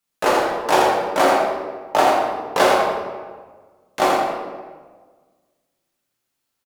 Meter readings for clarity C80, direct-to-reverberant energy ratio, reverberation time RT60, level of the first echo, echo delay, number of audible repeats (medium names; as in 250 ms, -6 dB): 0.5 dB, -5.0 dB, 1.5 s, -4.0 dB, 83 ms, 1